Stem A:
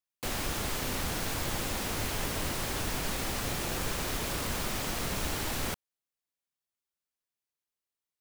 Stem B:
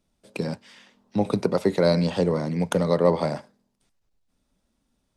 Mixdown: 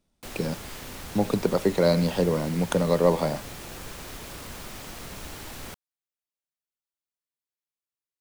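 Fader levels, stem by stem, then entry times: −6.5, −1.0 decibels; 0.00, 0.00 seconds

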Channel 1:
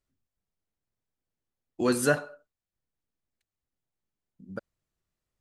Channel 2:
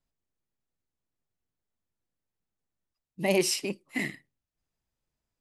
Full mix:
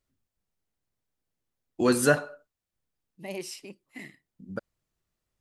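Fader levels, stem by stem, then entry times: +2.5, −12.0 decibels; 0.00, 0.00 seconds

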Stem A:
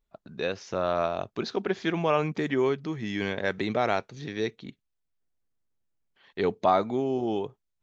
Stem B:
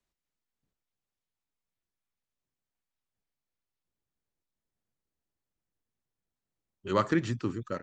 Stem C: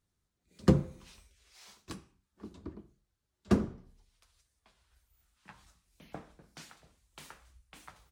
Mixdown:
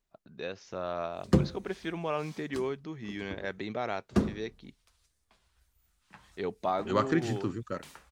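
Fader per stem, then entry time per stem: −8.0, −1.0, 0.0 decibels; 0.00, 0.00, 0.65 seconds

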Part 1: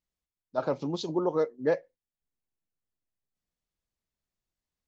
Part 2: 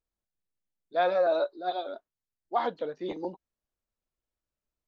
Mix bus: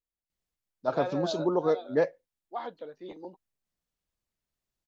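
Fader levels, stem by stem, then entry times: +1.0, −8.5 decibels; 0.30, 0.00 seconds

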